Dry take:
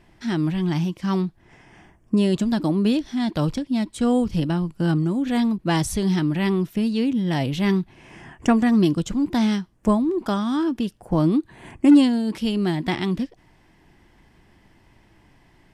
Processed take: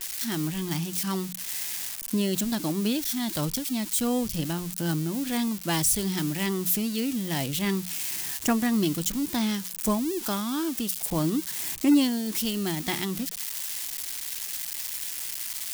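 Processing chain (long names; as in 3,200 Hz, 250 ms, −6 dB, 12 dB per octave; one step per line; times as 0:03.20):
spike at every zero crossing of −21 dBFS
high-shelf EQ 2,300 Hz +8.5 dB
mains-hum notches 60/120/180 Hz
level −7 dB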